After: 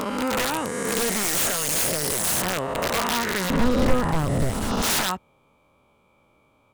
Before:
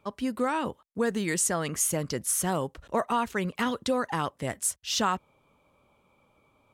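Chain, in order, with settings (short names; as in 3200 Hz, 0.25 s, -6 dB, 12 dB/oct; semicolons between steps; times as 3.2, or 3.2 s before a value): spectral swells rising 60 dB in 2.24 s; wrapped overs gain 16.5 dB; 3.5–4.82 tilt -4 dB/oct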